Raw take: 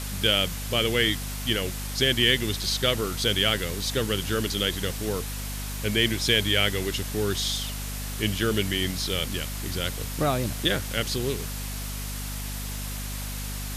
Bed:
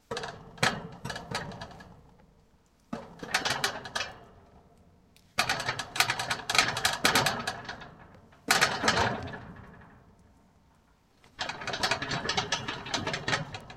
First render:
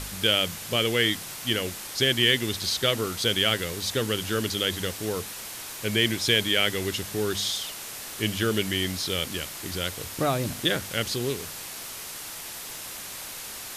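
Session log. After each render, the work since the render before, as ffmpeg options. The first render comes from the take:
-af "bandreject=f=50:t=h:w=4,bandreject=f=100:t=h:w=4,bandreject=f=150:t=h:w=4,bandreject=f=200:t=h:w=4,bandreject=f=250:t=h:w=4"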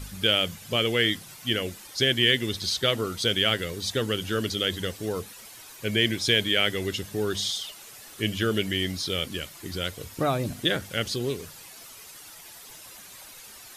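-af "afftdn=nr=11:nf=-38"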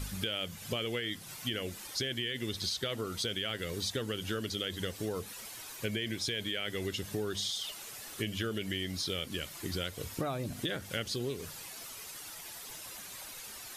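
-af "alimiter=limit=0.188:level=0:latency=1:release=12,acompressor=threshold=0.0251:ratio=6"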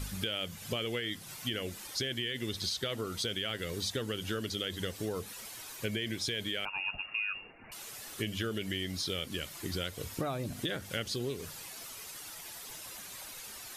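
-filter_complex "[0:a]asettb=1/sr,asplit=3[s0][s1][s2];[s0]atrim=end=6.654[s3];[s1]atrim=start=6.65:end=7.72,asetpts=PTS-STARTPTS,afade=t=in:d=0.004:c=qsin,afade=t=out:st=1.066:d=0.004:c=qsin,lowpass=f=2500:t=q:w=0.5098,lowpass=f=2500:t=q:w=0.6013,lowpass=f=2500:t=q:w=0.9,lowpass=f=2500:t=q:w=2.563,afreqshift=-2900[s4];[s2]atrim=start=7.716[s5];[s3][s4]acrossfade=d=0.004:c1=hsin:c2=qsin[s6];[s6][s5]acrossfade=d=0.004:c1=qsin:c2=hsin"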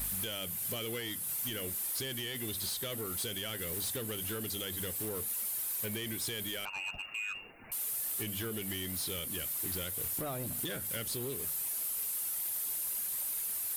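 -af "aexciter=amount=9.9:drive=2.7:freq=8400,asoftclip=type=tanh:threshold=0.0237"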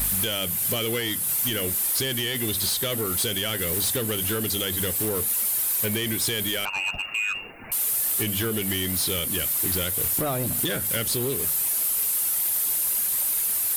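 -af "volume=3.76"

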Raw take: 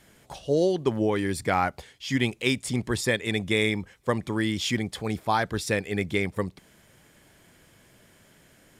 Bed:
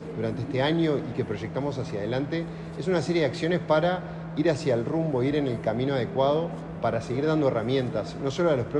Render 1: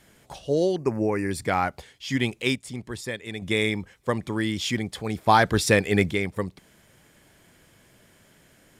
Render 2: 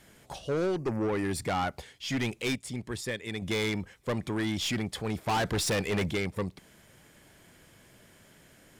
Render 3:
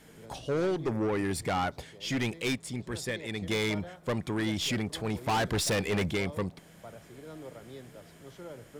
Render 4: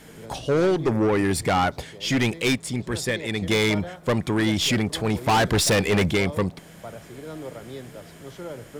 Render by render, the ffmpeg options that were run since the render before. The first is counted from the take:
-filter_complex "[0:a]asettb=1/sr,asplit=3[s0][s1][s2];[s0]atrim=end=0.764[s3];[s1]atrim=start=0.76:end=1.31,asetpts=PTS-STARTPTS,afade=t=in:d=0.004:c=qsin,afade=t=out:st=0.546:d=0.004:c=qsin,asuperstop=centerf=3500:order=12:qfactor=2[s4];[s2]atrim=start=1.306[s5];[s3][s4]acrossfade=d=0.004:c1=hsin:c2=qsin[s6];[s6][s5]acrossfade=d=0.004:c1=qsin:c2=hsin,asettb=1/sr,asplit=3[s7][s8][s9];[s7]atrim=end=5.274[s10];[s8]atrim=start=5.27:end=6.11,asetpts=PTS-STARTPTS,afade=t=in:d=0.004:c=qsin,afade=t=out:st=0.836:d=0.004:c=qsin,acontrast=87[s11];[s9]atrim=start=6.106[s12];[s10][s11]acrossfade=d=0.004:c1=hsin:c2=qsin[s13];[s13][s12]acrossfade=d=0.004:c1=qsin:c2=hsin,asplit=3[s14][s15][s16];[s14]atrim=end=2.562[s17];[s15]atrim=start=2.558:end=3.422,asetpts=PTS-STARTPTS,volume=0.422[s18];[s16]atrim=start=3.418[s19];[s17][s18]acrossfade=d=0.004:c1=hsin:c2=hsin[s20];[s20][s19]acrossfade=d=0.004:c1=hsin:c2=hsin"
-af "aeval=exprs='(tanh(17.8*val(0)+0.15)-tanh(0.15))/17.8':c=same"
-filter_complex "[1:a]volume=0.0841[s0];[0:a][s0]amix=inputs=2:normalize=0"
-af "volume=2.66"

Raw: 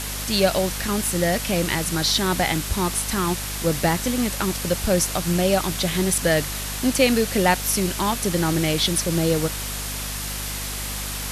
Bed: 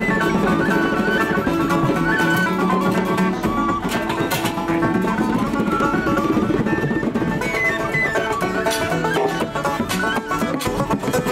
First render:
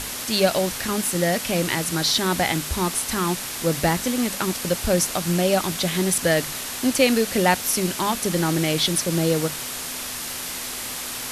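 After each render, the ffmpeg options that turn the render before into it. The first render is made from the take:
-af "bandreject=f=50:t=h:w=6,bandreject=f=100:t=h:w=6,bandreject=f=150:t=h:w=6,bandreject=f=200:t=h:w=6"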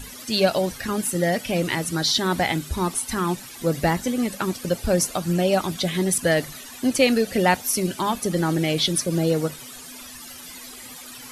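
-af "afftdn=nr=15:nf=-31"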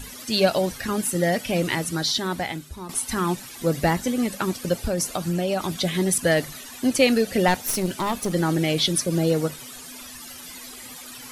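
-filter_complex "[0:a]asettb=1/sr,asplit=3[s0][s1][s2];[s0]atrim=end=4.744[s3];[s1]atrim=start=4.74:end=5.71,asetpts=PTS-STARTPTS,afade=t=in:d=0.004:c=qsin,afade=t=out:st=0.966:d=0.004:c=qsin,acompressor=threshold=0.1:ratio=4:attack=3.2:release=140:knee=1:detection=peak[s4];[s2]atrim=start=5.706[s5];[s3][s4]acrossfade=d=0.004:c1=hsin:c2=qsin[s6];[s6][s5]acrossfade=d=0.004:c1=qsin:c2=hsin,asettb=1/sr,asplit=3[s7][s8][s9];[s7]atrim=end=7.484[s10];[s8]atrim=start=7.48:end=8.32,asetpts=PTS-STARTPTS,afade=t=in:d=0.004:c=qsin,afade=t=out:st=0.836:d=0.004:c=qsin,aeval=exprs='clip(val(0),-1,0.0447)':c=same[s11];[s9]atrim=start=8.316[s12];[s10][s11]acrossfade=d=0.004:c1=hsin:c2=qsin[s13];[s13][s12]acrossfade=d=0.004:c1=qsin:c2=hsin,asplit=2[s14][s15];[s14]atrim=end=2.89,asetpts=PTS-STARTPTS,afade=t=out:st=1.74:d=1.15:silence=0.188365[s16];[s15]atrim=start=2.89,asetpts=PTS-STARTPTS,afade=t=in:d=0.004:c=hsin:silence=0.188365[s17];[s16][s17]concat=n=2:v=0:a=1"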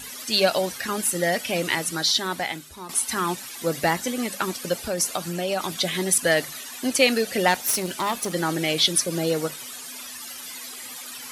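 -af "highpass=f=220:p=1,tiltshelf=f=640:g=-3"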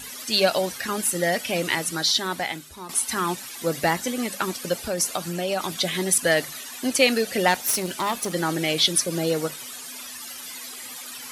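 -af anull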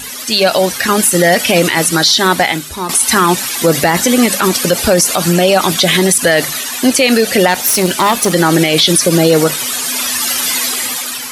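-af "dynaudnorm=f=240:g=7:m=3.55,alimiter=level_in=3.76:limit=0.891:release=50:level=0:latency=1"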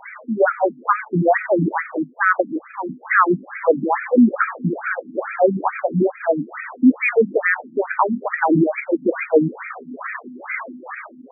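-af "afftfilt=real='re*between(b*sr/1024,220*pow(1800/220,0.5+0.5*sin(2*PI*2.3*pts/sr))/1.41,220*pow(1800/220,0.5+0.5*sin(2*PI*2.3*pts/sr))*1.41)':imag='im*between(b*sr/1024,220*pow(1800/220,0.5+0.5*sin(2*PI*2.3*pts/sr))/1.41,220*pow(1800/220,0.5+0.5*sin(2*PI*2.3*pts/sr))*1.41)':win_size=1024:overlap=0.75"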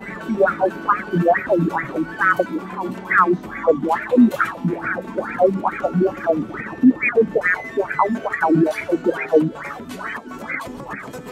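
-filter_complex "[1:a]volume=0.188[s0];[0:a][s0]amix=inputs=2:normalize=0"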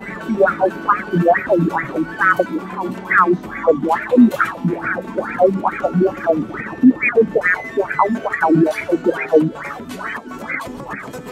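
-af "volume=1.33,alimiter=limit=0.794:level=0:latency=1"

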